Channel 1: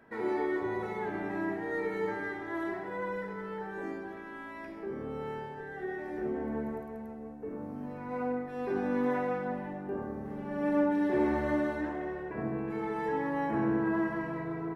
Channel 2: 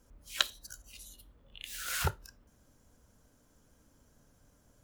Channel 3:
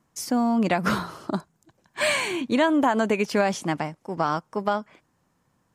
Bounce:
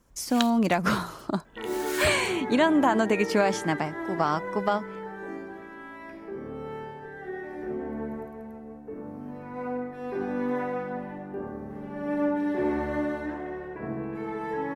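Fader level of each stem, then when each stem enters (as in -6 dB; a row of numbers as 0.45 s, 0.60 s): +1.0 dB, -1.0 dB, -1.0 dB; 1.45 s, 0.00 s, 0.00 s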